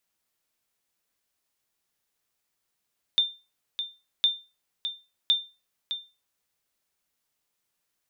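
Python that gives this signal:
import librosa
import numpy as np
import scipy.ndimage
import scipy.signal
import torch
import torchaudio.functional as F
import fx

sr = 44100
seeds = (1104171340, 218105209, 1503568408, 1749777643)

y = fx.sonar_ping(sr, hz=3590.0, decay_s=0.29, every_s=1.06, pings=3, echo_s=0.61, echo_db=-9.5, level_db=-14.0)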